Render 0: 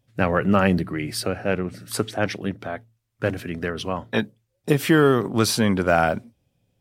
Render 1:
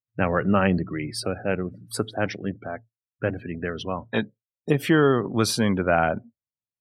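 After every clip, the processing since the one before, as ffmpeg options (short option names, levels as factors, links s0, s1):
-af "afftdn=nr=35:nf=-35,volume=0.794"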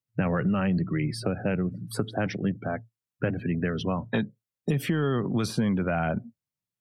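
-filter_complex "[0:a]equalizer=f=160:w=1.1:g=9,alimiter=limit=0.266:level=0:latency=1:release=11,acrossover=split=110|2100[s0][s1][s2];[s0]acompressor=threshold=0.01:ratio=4[s3];[s1]acompressor=threshold=0.0447:ratio=4[s4];[s2]acompressor=threshold=0.00891:ratio=4[s5];[s3][s4][s5]amix=inputs=3:normalize=0,volume=1.26"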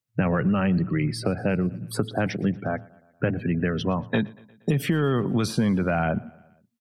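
-af "aecho=1:1:118|236|354|472:0.0668|0.0394|0.0233|0.0137,volume=1.41"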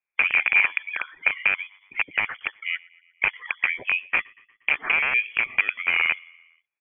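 -af "aeval=exprs='(mod(5.62*val(0)+1,2)-1)/5.62':c=same,highpass=f=1200:t=q:w=7.9,lowpass=f=3100:t=q:w=0.5098,lowpass=f=3100:t=q:w=0.6013,lowpass=f=3100:t=q:w=0.9,lowpass=f=3100:t=q:w=2.563,afreqshift=-3600,volume=0.841"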